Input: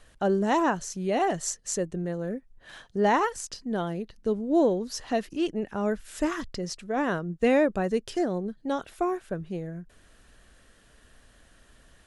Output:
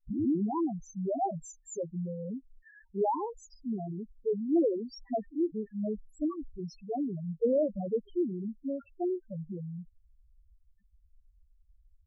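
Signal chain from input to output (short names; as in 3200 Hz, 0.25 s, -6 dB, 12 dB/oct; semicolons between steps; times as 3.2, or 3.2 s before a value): tape start at the beginning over 0.41 s; loudest bins only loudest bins 2; gain -1 dB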